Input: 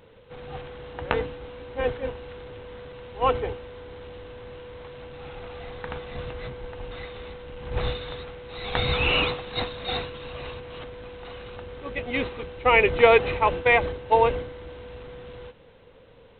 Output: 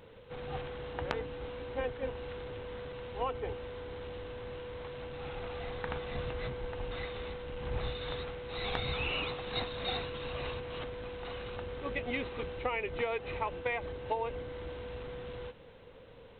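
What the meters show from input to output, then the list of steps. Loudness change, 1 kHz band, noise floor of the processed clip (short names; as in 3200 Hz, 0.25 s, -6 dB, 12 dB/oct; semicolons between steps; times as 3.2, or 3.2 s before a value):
-13.5 dB, -12.5 dB, -53 dBFS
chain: compressor 8:1, threshold -30 dBFS, peak gain reduction 19 dB; gain -1.5 dB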